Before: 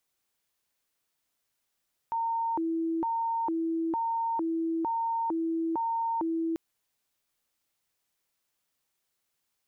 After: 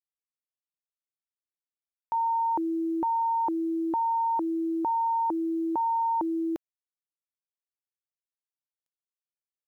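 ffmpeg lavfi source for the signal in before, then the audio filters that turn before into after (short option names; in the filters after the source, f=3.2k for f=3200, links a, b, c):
-f lavfi -i "aevalsrc='0.0473*sin(2*PI*(622*t+294/1.1*(0.5-abs(mod(1.1*t,1)-0.5))))':d=4.44:s=44100"
-af "equalizer=f=700:t=o:w=1.2:g=5,acrusher=bits=10:mix=0:aa=0.000001"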